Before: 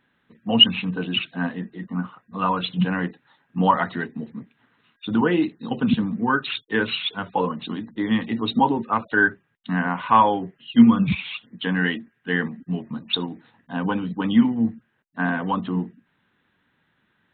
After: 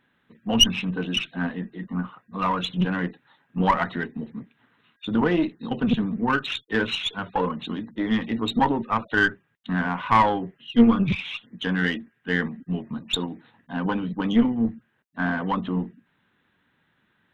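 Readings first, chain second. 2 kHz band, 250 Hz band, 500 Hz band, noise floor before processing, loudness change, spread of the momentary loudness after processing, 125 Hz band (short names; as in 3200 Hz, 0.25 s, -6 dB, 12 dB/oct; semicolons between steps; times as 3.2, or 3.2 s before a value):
-1.5 dB, -2.0 dB, -1.0 dB, -69 dBFS, -2.0 dB, 14 LU, -1.5 dB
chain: one diode to ground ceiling -17 dBFS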